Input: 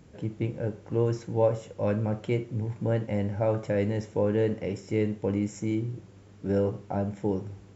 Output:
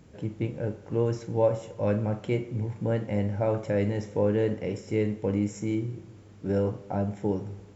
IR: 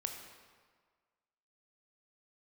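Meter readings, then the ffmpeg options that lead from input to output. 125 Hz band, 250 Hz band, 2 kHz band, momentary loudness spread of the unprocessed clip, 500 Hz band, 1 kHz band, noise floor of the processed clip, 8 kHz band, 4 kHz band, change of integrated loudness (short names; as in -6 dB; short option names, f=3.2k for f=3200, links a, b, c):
0.0 dB, +0.5 dB, 0.0 dB, 7 LU, 0.0 dB, +0.5 dB, -50 dBFS, n/a, 0.0 dB, 0.0 dB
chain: -filter_complex "[0:a]asplit=2[a][b];[1:a]atrim=start_sample=2205,adelay=39[c];[b][c]afir=irnorm=-1:irlink=0,volume=-12.5dB[d];[a][d]amix=inputs=2:normalize=0"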